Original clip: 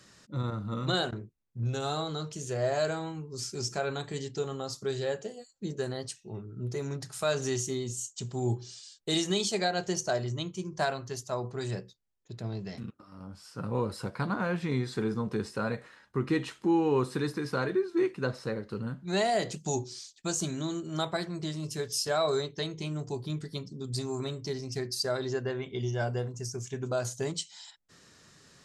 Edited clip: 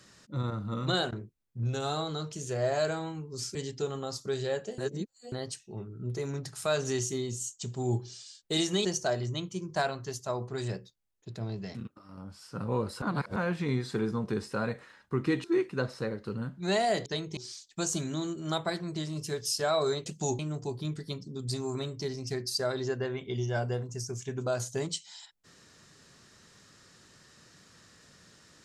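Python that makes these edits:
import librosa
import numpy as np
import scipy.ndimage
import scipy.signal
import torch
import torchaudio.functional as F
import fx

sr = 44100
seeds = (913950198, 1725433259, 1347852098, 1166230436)

y = fx.edit(x, sr, fx.cut(start_s=3.55, length_s=0.57),
    fx.reverse_span(start_s=5.35, length_s=0.54),
    fx.cut(start_s=9.42, length_s=0.46),
    fx.reverse_span(start_s=14.05, length_s=0.34),
    fx.cut(start_s=16.47, length_s=1.42),
    fx.swap(start_s=19.51, length_s=0.33, other_s=22.53, other_length_s=0.31), tone=tone)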